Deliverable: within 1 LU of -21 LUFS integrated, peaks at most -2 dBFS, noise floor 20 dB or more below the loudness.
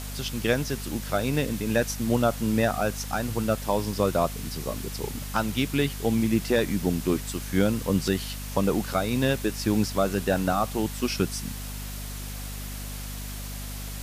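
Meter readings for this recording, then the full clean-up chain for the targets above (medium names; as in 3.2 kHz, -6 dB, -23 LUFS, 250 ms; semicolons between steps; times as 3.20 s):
hum 50 Hz; highest harmonic 250 Hz; hum level -33 dBFS; noise floor -35 dBFS; noise floor target -47 dBFS; loudness -27.0 LUFS; peak level -8.5 dBFS; loudness target -21.0 LUFS
-> de-hum 50 Hz, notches 5; noise reduction 12 dB, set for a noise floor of -35 dBFS; trim +6 dB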